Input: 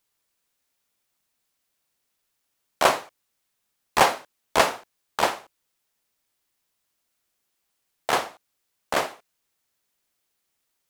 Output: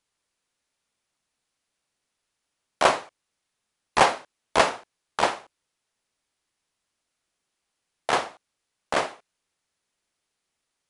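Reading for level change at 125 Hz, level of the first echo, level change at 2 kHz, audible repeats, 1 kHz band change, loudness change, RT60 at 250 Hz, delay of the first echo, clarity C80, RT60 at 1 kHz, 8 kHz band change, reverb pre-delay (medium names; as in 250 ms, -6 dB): 0.0 dB, no echo, -0.5 dB, no echo, 0.0 dB, -0.5 dB, no reverb, no echo, no reverb, no reverb, -3.0 dB, no reverb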